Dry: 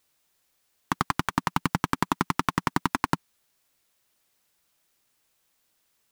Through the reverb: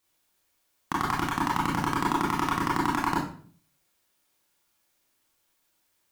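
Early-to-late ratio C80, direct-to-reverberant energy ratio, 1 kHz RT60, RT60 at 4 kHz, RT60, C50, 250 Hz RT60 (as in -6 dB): 9.0 dB, -5.0 dB, 0.45 s, 0.40 s, 0.50 s, 4.0 dB, 0.65 s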